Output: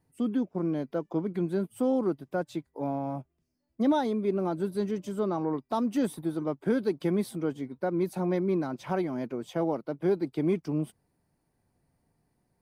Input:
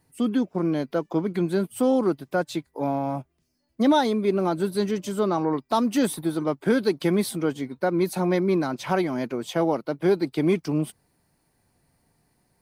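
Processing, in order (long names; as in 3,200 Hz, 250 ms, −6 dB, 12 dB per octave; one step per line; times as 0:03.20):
tilt shelving filter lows +4 dB, about 1,200 Hz
notch filter 4,200 Hz, Q 21
level −8.5 dB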